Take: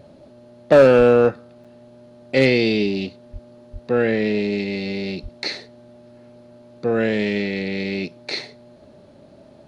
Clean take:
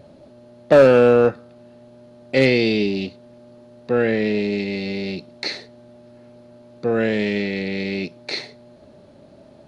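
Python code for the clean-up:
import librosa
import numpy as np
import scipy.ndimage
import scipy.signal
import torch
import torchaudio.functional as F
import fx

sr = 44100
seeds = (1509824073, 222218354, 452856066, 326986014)

y = fx.fix_deplosive(x, sr, at_s=(0.97, 3.32, 3.72, 5.22))
y = fx.fix_interpolate(y, sr, at_s=(1.64,), length_ms=6.0)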